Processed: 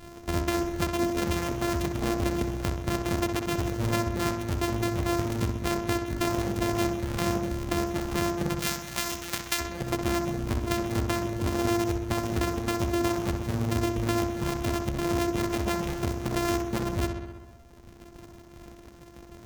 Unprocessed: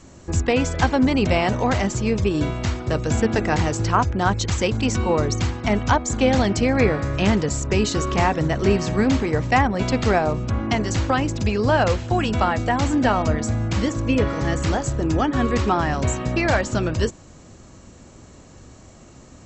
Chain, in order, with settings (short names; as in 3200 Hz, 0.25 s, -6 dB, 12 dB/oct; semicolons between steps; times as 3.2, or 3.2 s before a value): sample sorter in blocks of 128 samples; reverb removal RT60 1.6 s; 8.59–9.6 tilt shelf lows -10 dB, about 1100 Hz; compressor 4:1, threshold -27 dBFS, peak gain reduction 16.5 dB; darkening echo 64 ms, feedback 72%, low-pass 4800 Hz, level -7 dB